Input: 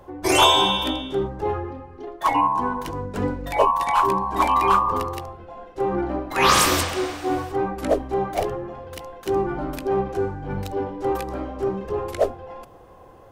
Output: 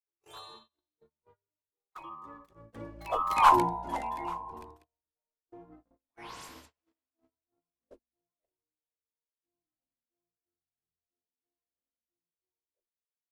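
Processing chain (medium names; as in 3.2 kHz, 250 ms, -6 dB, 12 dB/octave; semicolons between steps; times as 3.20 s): Doppler pass-by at 3.47 s, 45 m/s, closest 3.7 m; gate -50 dBFS, range -36 dB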